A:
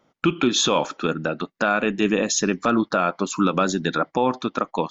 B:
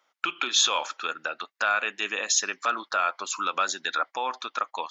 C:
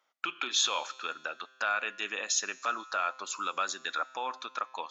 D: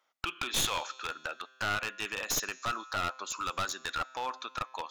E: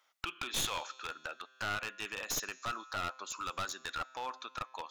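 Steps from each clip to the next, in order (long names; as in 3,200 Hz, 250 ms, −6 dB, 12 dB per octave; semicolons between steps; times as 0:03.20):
high-pass filter 1,100 Hz 12 dB per octave
tuned comb filter 130 Hz, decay 1.8 s, mix 50%
wavefolder on the positive side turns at −28 dBFS
one half of a high-frequency compander encoder only; level −4.5 dB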